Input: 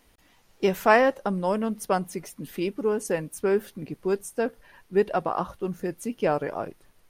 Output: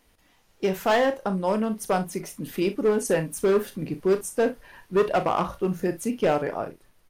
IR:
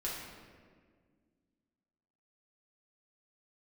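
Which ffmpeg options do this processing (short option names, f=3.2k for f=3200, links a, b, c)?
-filter_complex "[0:a]dynaudnorm=f=300:g=7:m=7dB,asoftclip=type=hard:threshold=-14dB,asplit=2[a][b];[b]aecho=0:1:37|61:0.299|0.141[c];[a][c]amix=inputs=2:normalize=0,volume=-2dB"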